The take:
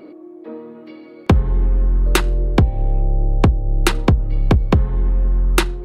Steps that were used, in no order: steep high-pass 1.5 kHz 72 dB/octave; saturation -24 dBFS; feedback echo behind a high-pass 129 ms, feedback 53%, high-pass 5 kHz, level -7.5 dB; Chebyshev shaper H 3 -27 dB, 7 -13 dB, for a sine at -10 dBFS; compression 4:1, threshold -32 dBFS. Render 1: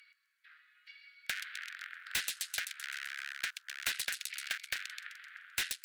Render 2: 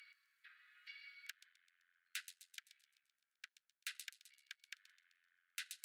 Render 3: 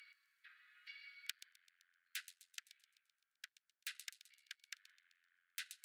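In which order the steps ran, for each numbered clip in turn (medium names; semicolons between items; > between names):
feedback echo behind a high-pass > Chebyshev shaper > steep high-pass > saturation > compression; feedback echo behind a high-pass > compression > saturation > Chebyshev shaper > steep high-pass; compression > feedback echo behind a high-pass > Chebyshev shaper > saturation > steep high-pass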